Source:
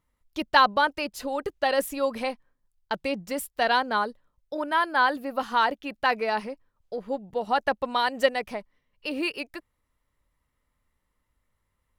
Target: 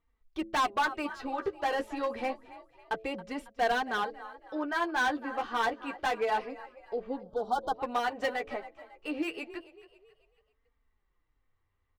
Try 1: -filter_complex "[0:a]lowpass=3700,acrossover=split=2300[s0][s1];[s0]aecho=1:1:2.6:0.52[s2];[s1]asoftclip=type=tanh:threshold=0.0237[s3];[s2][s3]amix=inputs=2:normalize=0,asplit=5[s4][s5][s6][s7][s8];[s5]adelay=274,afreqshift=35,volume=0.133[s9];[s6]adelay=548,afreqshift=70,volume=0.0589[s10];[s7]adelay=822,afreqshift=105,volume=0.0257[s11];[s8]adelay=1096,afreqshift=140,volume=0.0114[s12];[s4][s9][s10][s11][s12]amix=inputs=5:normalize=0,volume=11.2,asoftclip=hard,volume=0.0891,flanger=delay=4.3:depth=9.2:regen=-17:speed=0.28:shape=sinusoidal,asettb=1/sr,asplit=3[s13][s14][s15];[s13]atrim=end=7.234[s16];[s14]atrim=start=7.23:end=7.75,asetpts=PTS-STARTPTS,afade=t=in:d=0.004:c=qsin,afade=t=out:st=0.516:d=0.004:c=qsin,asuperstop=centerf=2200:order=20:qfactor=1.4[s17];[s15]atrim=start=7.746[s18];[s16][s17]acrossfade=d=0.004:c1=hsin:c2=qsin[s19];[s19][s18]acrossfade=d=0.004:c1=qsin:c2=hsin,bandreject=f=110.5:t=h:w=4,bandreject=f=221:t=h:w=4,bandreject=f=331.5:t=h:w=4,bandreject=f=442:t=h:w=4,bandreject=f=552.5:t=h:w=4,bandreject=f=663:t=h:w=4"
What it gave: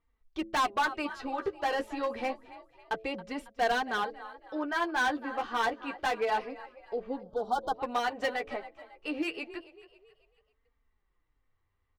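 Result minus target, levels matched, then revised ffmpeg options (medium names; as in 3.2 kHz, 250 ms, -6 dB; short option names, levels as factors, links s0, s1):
saturation: distortion -5 dB
-filter_complex "[0:a]lowpass=3700,acrossover=split=2300[s0][s1];[s0]aecho=1:1:2.6:0.52[s2];[s1]asoftclip=type=tanh:threshold=0.00944[s3];[s2][s3]amix=inputs=2:normalize=0,asplit=5[s4][s5][s6][s7][s8];[s5]adelay=274,afreqshift=35,volume=0.133[s9];[s6]adelay=548,afreqshift=70,volume=0.0589[s10];[s7]adelay=822,afreqshift=105,volume=0.0257[s11];[s8]adelay=1096,afreqshift=140,volume=0.0114[s12];[s4][s9][s10][s11][s12]amix=inputs=5:normalize=0,volume=11.2,asoftclip=hard,volume=0.0891,flanger=delay=4.3:depth=9.2:regen=-17:speed=0.28:shape=sinusoidal,asettb=1/sr,asplit=3[s13][s14][s15];[s13]atrim=end=7.234[s16];[s14]atrim=start=7.23:end=7.75,asetpts=PTS-STARTPTS,afade=t=in:d=0.004:c=qsin,afade=t=out:st=0.516:d=0.004:c=qsin,asuperstop=centerf=2200:order=20:qfactor=1.4[s17];[s15]atrim=start=7.746[s18];[s16][s17]acrossfade=d=0.004:c1=hsin:c2=qsin[s19];[s19][s18]acrossfade=d=0.004:c1=qsin:c2=hsin,bandreject=f=110.5:t=h:w=4,bandreject=f=221:t=h:w=4,bandreject=f=331.5:t=h:w=4,bandreject=f=442:t=h:w=4,bandreject=f=552.5:t=h:w=4,bandreject=f=663:t=h:w=4"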